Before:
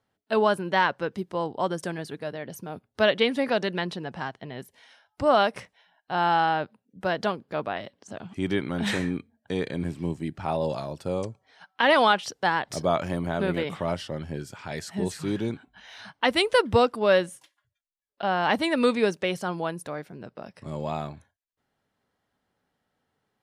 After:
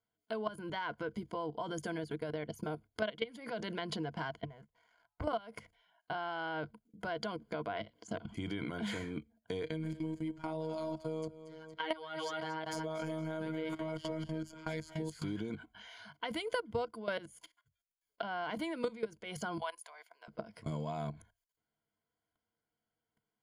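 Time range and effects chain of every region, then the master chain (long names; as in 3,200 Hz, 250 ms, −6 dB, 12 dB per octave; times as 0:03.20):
0:04.45–0:05.24: low-pass filter 1,100 Hz + parametric band 300 Hz −14 dB 2.2 octaves + leveller curve on the samples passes 2
0:09.63–0:15.12: phases set to zero 158 Hz + repeating echo 231 ms, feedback 34%, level −10 dB
0:19.58–0:20.28: high-pass filter 810 Hz 24 dB per octave + parametric band 1,400 Hz −9 dB 0.28 octaves
whole clip: output level in coarse steps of 19 dB; EQ curve with evenly spaced ripples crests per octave 1.8, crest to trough 12 dB; downward compressor 6 to 1, threshold −37 dBFS; level +2.5 dB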